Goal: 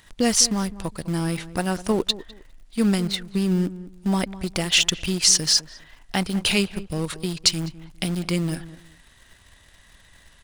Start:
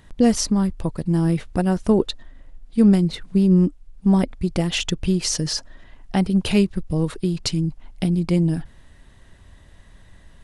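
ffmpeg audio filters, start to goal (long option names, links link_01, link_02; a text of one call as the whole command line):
ffmpeg -i in.wav -filter_complex "[0:a]tiltshelf=frequency=970:gain=-7.5,asplit=2[link_01][link_02];[link_02]acrusher=bits=5:dc=4:mix=0:aa=0.000001,volume=-9.5dB[link_03];[link_01][link_03]amix=inputs=2:normalize=0,asplit=2[link_04][link_05];[link_05]adelay=203,lowpass=frequency=1300:poles=1,volume=-15dB,asplit=2[link_06][link_07];[link_07]adelay=203,lowpass=frequency=1300:poles=1,volume=0.23[link_08];[link_04][link_06][link_08]amix=inputs=3:normalize=0,volume=-2dB" out.wav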